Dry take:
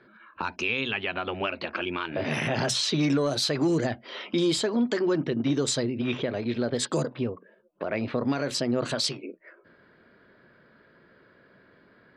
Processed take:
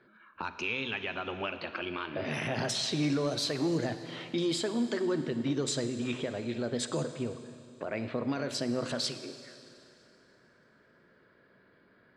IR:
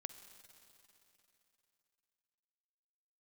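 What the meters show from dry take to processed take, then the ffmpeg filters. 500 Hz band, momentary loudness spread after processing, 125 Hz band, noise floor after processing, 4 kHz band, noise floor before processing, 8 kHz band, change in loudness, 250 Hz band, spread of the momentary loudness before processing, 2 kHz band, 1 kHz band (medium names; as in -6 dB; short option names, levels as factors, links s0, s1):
-5.5 dB, 10 LU, -5.5 dB, -64 dBFS, -5.5 dB, -59 dBFS, -5.5 dB, -5.5 dB, -5.5 dB, 8 LU, -5.5 dB, -5.5 dB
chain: -filter_complex "[1:a]atrim=start_sample=2205,asetrate=52920,aresample=44100[s0];[0:a][s0]afir=irnorm=-1:irlink=0"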